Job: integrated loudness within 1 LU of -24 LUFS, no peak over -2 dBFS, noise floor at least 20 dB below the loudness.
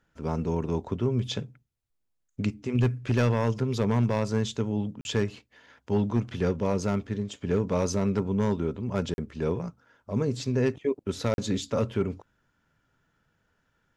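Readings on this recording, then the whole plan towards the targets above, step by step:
clipped samples 0.5%; clipping level -16.0 dBFS; dropouts 3; longest dropout 41 ms; loudness -28.5 LUFS; peak level -16.0 dBFS; loudness target -24.0 LUFS
-> clip repair -16 dBFS; interpolate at 5.01/9.14/11.34 s, 41 ms; trim +4.5 dB

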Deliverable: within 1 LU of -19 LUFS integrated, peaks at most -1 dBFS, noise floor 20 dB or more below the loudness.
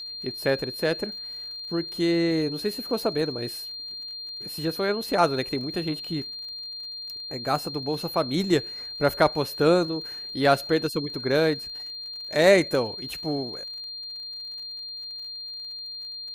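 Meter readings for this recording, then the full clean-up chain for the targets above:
tick rate 58 per s; steady tone 4.2 kHz; tone level -34 dBFS; loudness -26.5 LUFS; peak level -5.0 dBFS; loudness target -19.0 LUFS
-> de-click; band-stop 4.2 kHz, Q 30; trim +7.5 dB; peak limiter -1 dBFS

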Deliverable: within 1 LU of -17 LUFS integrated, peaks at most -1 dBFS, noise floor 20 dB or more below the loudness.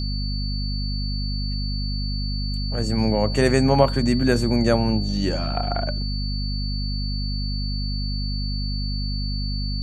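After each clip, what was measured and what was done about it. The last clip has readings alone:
hum 50 Hz; highest harmonic 250 Hz; hum level -23 dBFS; steady tone 4.5 kHz; tone level -32 dBFS; loudness -24.0 LUFS; peak level -2.0 dBFS; loudness target -17.0 LUFS
-> hum notches 50/100/150/200/250 Hz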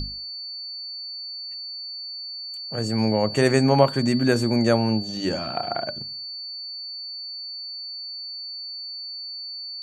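hum not found; steady tone 4.5 kHz; tone level -32 dBFS
-> band-stop 4.5 kHz, Q 30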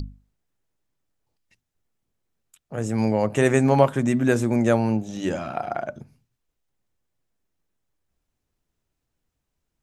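steady tone not found; loudness -22.5 LUFS; peak level -2.5 dBFS; loudness target -17.0 LUFS
-> trim +5.5 dB; peak limiter -1 dBFS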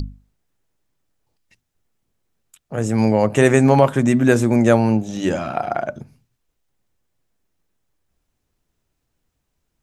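loudness -17.0 LUFS; peak level -1.0 dBFS; noise floor -75 dBFS

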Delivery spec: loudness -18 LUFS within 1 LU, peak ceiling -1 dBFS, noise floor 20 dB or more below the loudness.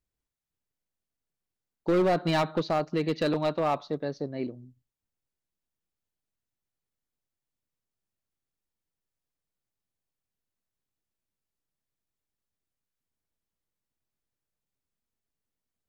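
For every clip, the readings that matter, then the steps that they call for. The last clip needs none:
clipped samples 0.6%; clipping level -19.5 dBFS; loudness -28.5 LUFS; peak level -19.5 dBFS; loudness target -18.0 LUFS
-> clip repair -19.5 dBFS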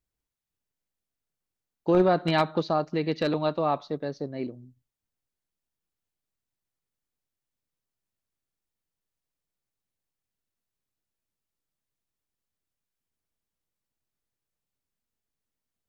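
clipped samples 0.0%; loudness -26.5 LUFS; peak level -10.5 dBFS; loudness target -18.0 LUFS
-> trim +8.5 dB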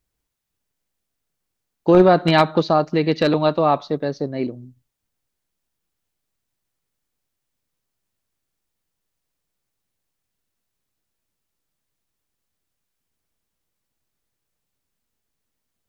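loudness -18.0 LUFS; peak level -2.0 dBFS; noise floor -79 dBFS

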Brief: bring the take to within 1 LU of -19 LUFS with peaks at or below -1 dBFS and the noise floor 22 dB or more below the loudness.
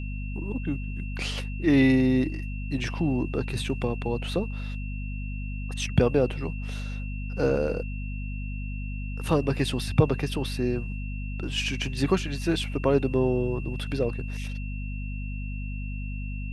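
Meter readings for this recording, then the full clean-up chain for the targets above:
hum 50 Hz; highest harmonic 250 Hz; hum level -30 dBFS; steady tone 2.7 kHz; tone level -43 dBFS; loudness -28.0 LUFS; peak level -6.5 dBFS; loudness target -19.0 LUFS
-> de-hum 50 Hz, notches 5; band-stop 2.7 kHz, Q 30; trim +9 dB; peak limiter -1 dBFS

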